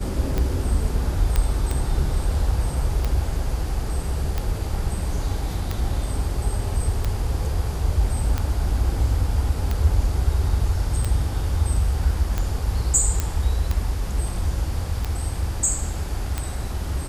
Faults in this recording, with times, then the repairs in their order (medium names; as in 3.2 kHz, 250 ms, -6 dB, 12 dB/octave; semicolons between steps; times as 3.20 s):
tick 45 rpm -11 dBFS
1.36 s: pop -8 dBFS
13.20 s: pop -8 dBFS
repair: de-click